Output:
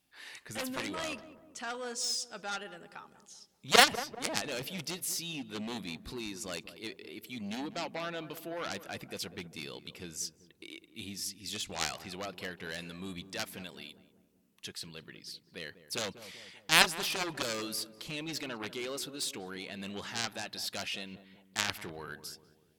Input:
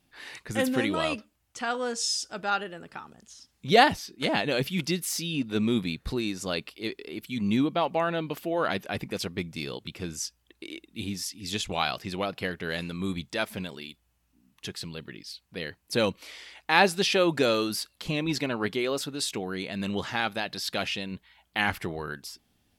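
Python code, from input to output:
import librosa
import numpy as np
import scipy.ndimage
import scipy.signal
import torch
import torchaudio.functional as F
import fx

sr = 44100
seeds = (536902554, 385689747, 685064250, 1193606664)

y = fx.cheby_harmonics(x, sr, harmonics=(3, 7), levels_db=(-19, -16), full_scale_db=-4.0)
y = fx.tilt_eq(y, sr, slope=1.5)
y = fx.echo_filtered(y, sr, ms=195, feedback_pct=55, hz=890.0, wet_db=-12.0)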